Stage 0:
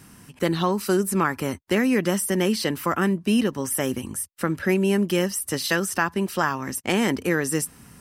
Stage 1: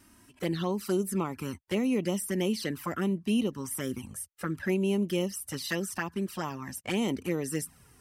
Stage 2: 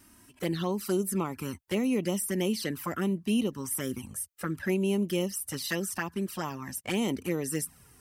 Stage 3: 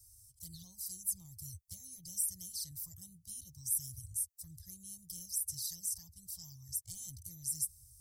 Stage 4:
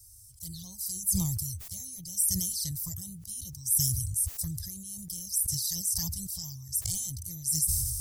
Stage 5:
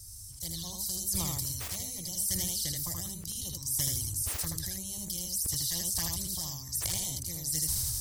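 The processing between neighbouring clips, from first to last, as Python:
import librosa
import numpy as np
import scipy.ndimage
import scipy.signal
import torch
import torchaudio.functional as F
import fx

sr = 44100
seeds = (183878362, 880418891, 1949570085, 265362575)

y1 = fx.env_flanger(x, sr, rest_ms=3.5, full_db=-17.5)
y1 = y1 * librosa.db_to_amplitude(-6.0)
y2 = fx.high_shelf(y1, sr, hz=9300.0, db=6.5)
y3 = scipy.signal.sosfilt(scipy.signal.cheby2(4, 40, [210.0, 2800.0], 'bandstop', fs=sr, output='sos'), y2)
y4 = fx.sustainer(y3, sr, db_per_s=28.0)
y4 = y4 * librosa.db_to_amplitude(7.0)
y5 = fx.lowpass(y4, sr, hz=3000.0, slope=6)
y5 = y5 + 10.0 ** (-4.5 / 20.0) * np.pad(y5, (int(79 * sr / 1000.0), 0))[:len(y5)]
y5 = fx.spectral_comp(y5, sr, ratio=2.0)
y5 = y5 * librosa.db_to_amplitude(3.0)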